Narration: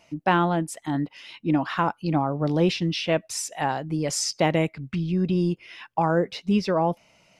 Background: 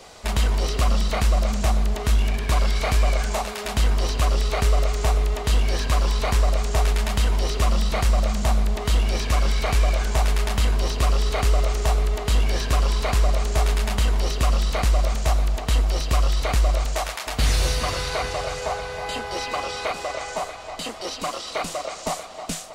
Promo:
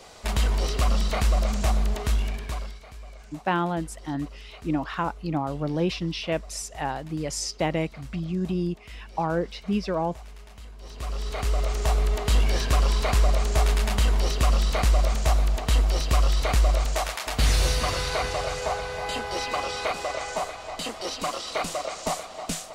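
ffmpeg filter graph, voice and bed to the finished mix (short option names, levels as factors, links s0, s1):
-filter_complex "[0:a]adelay=3200,volume=0.631[s0];[1:a]volume=10,afade=t=out:st=1.93:d=0.87:silence=0.0891251,afade=t=in:st=10.78:d=1.35:silence=0.0749894[s1];[s0][s1]amix=inputs=2:normalize=0"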